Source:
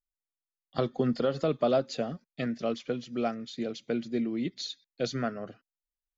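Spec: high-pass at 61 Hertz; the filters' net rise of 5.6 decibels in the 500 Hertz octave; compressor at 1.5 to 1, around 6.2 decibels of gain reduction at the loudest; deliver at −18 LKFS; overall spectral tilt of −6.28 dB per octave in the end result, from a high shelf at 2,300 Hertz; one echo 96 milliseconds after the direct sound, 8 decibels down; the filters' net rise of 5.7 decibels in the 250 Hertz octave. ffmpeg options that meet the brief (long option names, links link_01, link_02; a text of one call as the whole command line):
ffmpeg -i in.wav -af "highpass=61,equalizer=frequency=250:width_type=o:gain=5,equalizer=frequency=500:width_type=o:gain=6,highshelf=frequency=2300:gain=-6.5,acompressor=threshold=-34dB:ratio=1.5,aecho=1:1:96:0.398,volume=13.5dB" out.wav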